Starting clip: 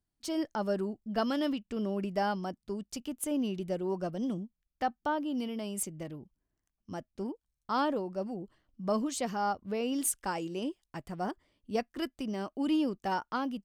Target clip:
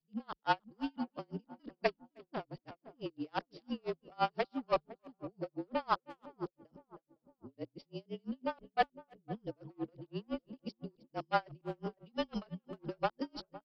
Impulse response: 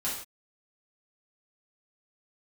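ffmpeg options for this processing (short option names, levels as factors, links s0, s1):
-filter_complex "[0:a]areverse,bass=f=250:g=-15,treble=f=4000:g=-3,acrossover=split=590|4000[s0][s1][s2];[s0]asoftclip=type=hard:threshold=0.0141[s3];[s1]aeval=exprs='0.0841*(cos(1*acos(clip(val(0)/0.0841,-1,1)))-cos(1*PI/2))+0.0106*(cos(7*acos(clip(val(0)/0.0841,-1,1)))-cos(7*PI/2))':c=same[s4];[s3][s4][s2]amix=inputs=3:normalize=0,afreqshift=-36,asplit=2[s5][s6];[s6]adelay=509,lowpass=f=910:p=1,volume=0.168,asplit=2[s7][s8];[s8]adelay=509,lowpass=f=910:p=1,volume=0.54,asplit=2[s9][s10];[s10]adelay=509,lowpass=f=910:p=1,volume=0.54,asplit=2[s11][s12];[s12]adelay=509,lowpass=f=910:p=1,volume=0.54,asplit=2[s13][s14];[s14]adelay=509,lowpass=f=910:p=1,volume=0.54[s15];[s5][s7][s9][s11][s13][s15]amix=inputs=6:normalize=0,aresample=11025,aresample=44100,asplit=2[s16][s17];[s17]adelay=310,highpass=300,lowpass=3400,asoftclip=type=hard:threshold=0.0422,volume=0.112[s18];[s16][s18]amix=inputs=2:normalize=0,aeval=exprs='val(0)*pow(10,-39*(0.5-0.5*cos(2*PI*5.9*n/s))/20)':c=same,volume=2"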